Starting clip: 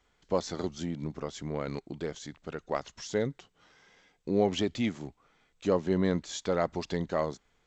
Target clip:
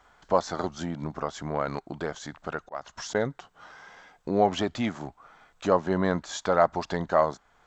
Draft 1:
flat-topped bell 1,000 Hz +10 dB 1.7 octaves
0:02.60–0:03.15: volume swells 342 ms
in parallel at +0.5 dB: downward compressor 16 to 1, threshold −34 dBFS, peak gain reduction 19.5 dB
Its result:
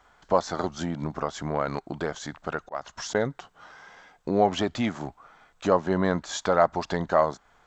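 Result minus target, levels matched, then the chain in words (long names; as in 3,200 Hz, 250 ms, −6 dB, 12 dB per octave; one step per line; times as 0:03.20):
downward compressor: peak gain reduction −9 dB
flat-topped bell 1,000 Hz +10 dB 1.7 octaves
0:02.60–0:03.15: volume swells 342 ms
in parallel at +0.5 dB: downward compressor 16 to 1, threshold −43.5 dBFS, peak gain reduction 28 dB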